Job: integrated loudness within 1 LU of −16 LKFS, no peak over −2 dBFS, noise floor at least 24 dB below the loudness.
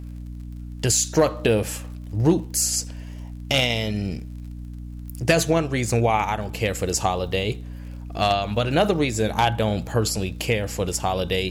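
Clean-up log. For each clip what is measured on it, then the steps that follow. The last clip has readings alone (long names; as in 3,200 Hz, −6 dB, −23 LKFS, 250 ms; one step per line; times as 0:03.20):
crackle rate 45 per second; mains hum 60 Hz; hum harmonics up to 300 Hz; level of the hum −33 dBFS; integrated loudness −22.5 LKFS; sample peak −7.5 dBFS; target loudness −16.0 LKFS
→ click removal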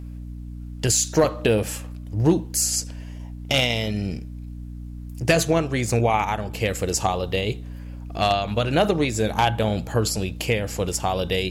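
crackle rate 0.43 per second; mains hum 60 Hz; hum harmonics up to 300 Hz; level of the hum −33 dBFS
→ hum removal 60 Hz, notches 5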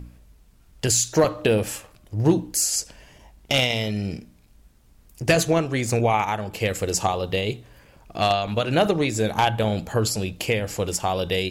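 mains hum none found; integrated loudness −23.0 LKFS; sample peak −7.5 dBFS; target loudness −16.0 LKFS
→ level +7 dB
brickwall limiter −2 dBFS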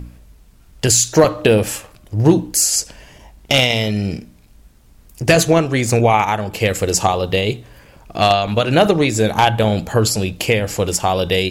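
integrated loudness −16.0 LKFS; sample peak −2.0 dBFS; background noise floor −48 dBFS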